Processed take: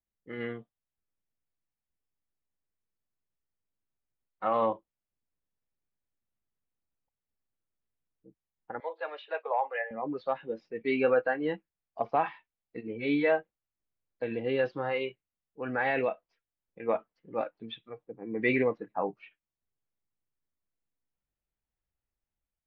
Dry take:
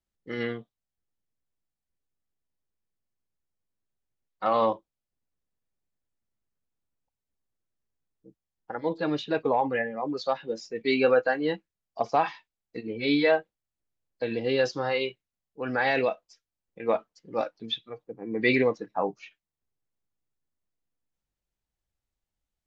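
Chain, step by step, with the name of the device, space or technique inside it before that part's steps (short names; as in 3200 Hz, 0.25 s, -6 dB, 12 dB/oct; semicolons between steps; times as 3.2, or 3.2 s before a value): 8.8–9.91 steep high-pass 520 Hz 36 dB/oct; action camera in a waterproof case (LPF 2800 Hz 24 dB/oct; AGC gain up to 3 dB; gain -6.5 dB; AAC 128 kbps 48000 Hz)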